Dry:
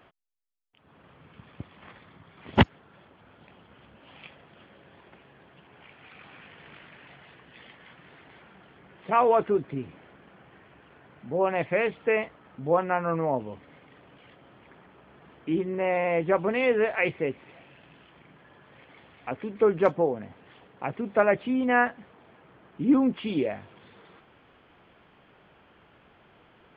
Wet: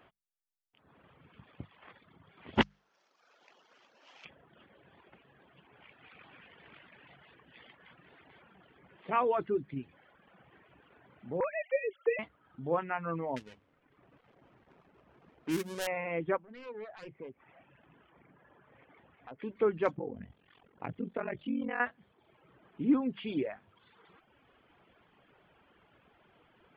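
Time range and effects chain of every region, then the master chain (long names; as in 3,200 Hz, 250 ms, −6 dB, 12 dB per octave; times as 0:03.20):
0:02.61–0:04.25: variable-slope delta modulation 32 kbit/s + high-pass filter 460 Hz
0:11.40–0:12.19: three sine waves on the formant tracks + multiband upward and downward compressor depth 70%
0:13.36–0:15.87: gap after every zero crossing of 0.3 ms + low-pass that shuts in the quiet parts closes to 1,700 Hz, open at −24.5 dBFS + high-shelf EQ 3,500 Hz +7 dB
0:16.37–0:19.39: phase distortion by the signal itself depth 0.29 ms + downward compressor 2 to 1, threshold −45 dBFS + low-pass filter 2,000 Hz
0:19.93–0:21.80: low-shelf EQ 290 Hz +8 dB + downward compressor 2.5 to 1, threshold −23 dBFS + ring modulation 22 Hz
whole clip: mains-hum notches 50/100/150/200 Hz; reverb reduction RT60 1 s; dynamic equaliser 670 Hz, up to −5 dB, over −37 dBFS, Q 1.3; level −4.5 dB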